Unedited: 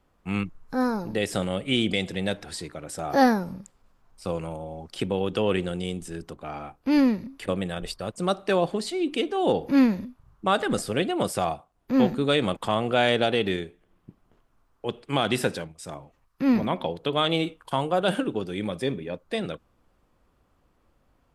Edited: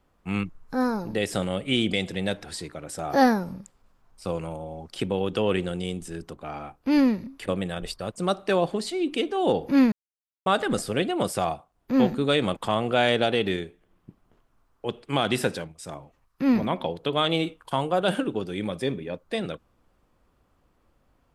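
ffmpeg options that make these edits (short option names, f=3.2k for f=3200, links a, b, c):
-filter_complex "[0:a]asplit=3[a][b][c];[a]atrim=end=9.92,asetpts=PTS-STARTPTS,afade=t=out:st=9.916:d=0.004:c=hsin[d];[b]atrim=start=9.92:end=10.46,asetpts=PTS-STARTPTS,volume=0[e];[c]atrim=start=10.46,asetpts=PTS-STARTPTS,afade=t=in:d=0.004:c=hsin[f];[d][e][f]concat=n=3:v=0:a=1"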